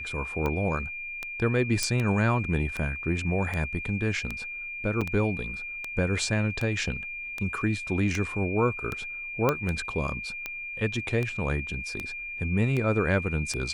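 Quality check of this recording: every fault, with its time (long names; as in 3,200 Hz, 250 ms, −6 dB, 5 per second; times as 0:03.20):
scratch tick 78 rpm −17 dBFS
whistle 2,400 Hz −34 dBFS
0:01.83: click −11 dBFS
0:05.01–0:05.02: drop-out 5.5 ms
0:09.49: click −10 dBFS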